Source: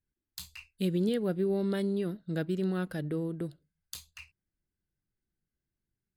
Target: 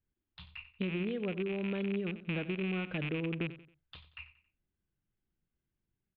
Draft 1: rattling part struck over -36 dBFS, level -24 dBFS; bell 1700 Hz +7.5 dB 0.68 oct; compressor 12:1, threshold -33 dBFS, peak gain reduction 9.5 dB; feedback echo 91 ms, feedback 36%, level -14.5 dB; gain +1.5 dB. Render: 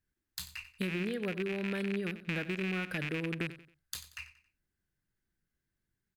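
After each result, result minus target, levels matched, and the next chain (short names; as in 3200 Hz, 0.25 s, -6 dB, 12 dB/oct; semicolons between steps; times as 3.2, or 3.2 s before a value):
2000 Hz band +4.0 dB; 4000 Hz band +3.5 dB
rattling part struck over -36 dBFS, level -24 dBFS; bell 1700 Hz -3 dB 0.68 oct; compressor 12:1, threshold -33 dBFS, peak gain reduction 9 dB; feedback echo 91 ms, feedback 36%, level -14.5 dB; gain +1.5 dB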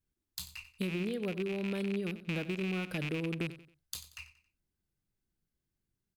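4000 Hz band +3.5 dB
rattling part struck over -36 dBFS, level -24 dBFS; bell 1700 Hz -3 dB 0.68 oct; compressor 12:1, threshold -33 dBFS, peak gain reduction 9 dB; steep low-pass 3400 Hz 48 dB/oct; feedback echo 91 ms, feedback 36%, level -14.5 dB; gain +1.5 dB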